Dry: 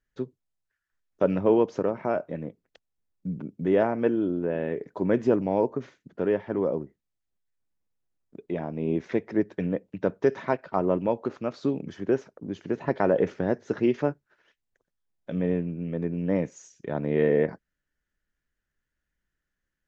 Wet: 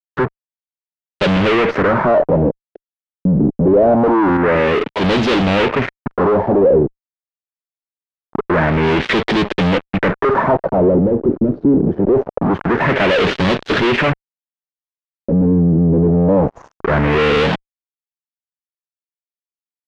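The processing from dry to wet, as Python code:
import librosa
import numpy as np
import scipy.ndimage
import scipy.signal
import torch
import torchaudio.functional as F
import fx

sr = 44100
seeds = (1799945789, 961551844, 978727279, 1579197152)

y = fx.fuzz(x, sr, gain_db=48.0, gate_db=-48.0)
y = fx.filter_lfo_lowpass(y, sr, shape='sine', hz=0.24, low_hz=320.0, high_hz=3600.0, q=1.9)
y = fx.band_widen(y, sr, depth_pct=100, at=(4.37, 5.75))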